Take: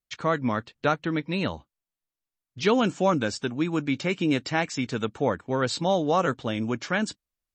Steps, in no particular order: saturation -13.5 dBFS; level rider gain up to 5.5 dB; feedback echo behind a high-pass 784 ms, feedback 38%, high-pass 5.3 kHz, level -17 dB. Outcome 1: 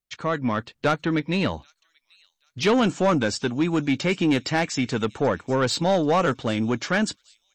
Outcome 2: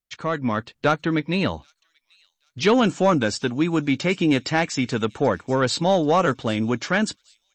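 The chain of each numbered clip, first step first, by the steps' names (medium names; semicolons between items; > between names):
feedback echo behind a high-pass > level rider > saturation; saturation > feedback echo behind a high-pass > level rider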